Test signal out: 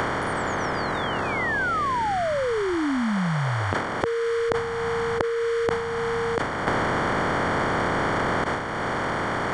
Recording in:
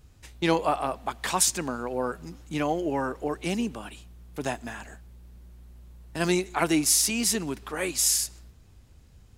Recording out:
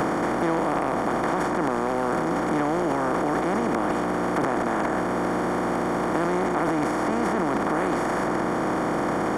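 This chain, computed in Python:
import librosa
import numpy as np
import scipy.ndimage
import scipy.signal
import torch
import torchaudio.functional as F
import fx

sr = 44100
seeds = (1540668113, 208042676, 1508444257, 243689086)

y = fx.bin_compress(x, sr, power=0.2)
y = scipy.signal.savgol_filter(y, 41, 4, mode='constant')
y = fx.transient(y, sr, attack_db=-2, sustain_db=11)
y = fx.band_squash(y, sr, depth_pct=100)
y = F.gain(torch.from_numpy(y), -5.5).numpy()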